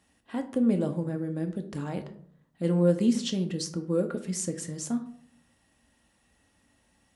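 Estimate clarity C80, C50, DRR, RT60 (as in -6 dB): 16.0 dB, 12.5 dB, 5.5 dB, 0.55 s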